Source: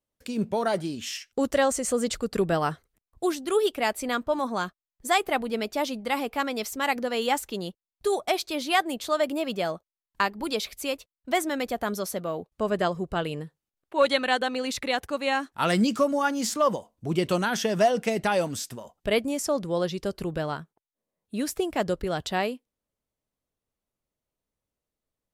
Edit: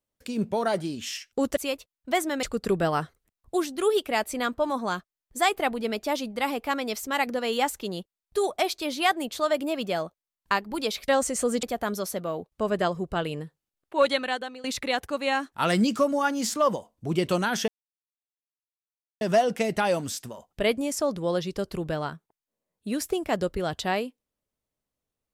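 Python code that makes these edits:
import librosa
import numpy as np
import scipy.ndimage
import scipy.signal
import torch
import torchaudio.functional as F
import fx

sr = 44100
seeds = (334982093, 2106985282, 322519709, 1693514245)

y = fx.edit(x, sr, fx.swap(start_s=1.57, length_s=0.55, other_s=10.77, other_length_s=0.86),
    fx.fade_out_to(start_s=14.02, length_s=0.62, floor_db=-17.5),
    fx.insert_silence(at_s=17.68, length_s=1.53), tone=tone)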